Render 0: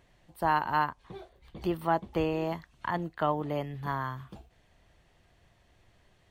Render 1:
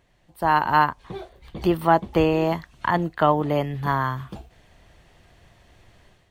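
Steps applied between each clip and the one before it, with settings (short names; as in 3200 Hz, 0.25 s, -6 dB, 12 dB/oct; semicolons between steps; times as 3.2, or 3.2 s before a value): AGC gain up to 10 dB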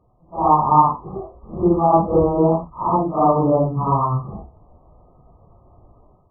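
phase scrambler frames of 0.2 s; brick-wall FIR low-pass 1300 Hz; gain +5 dB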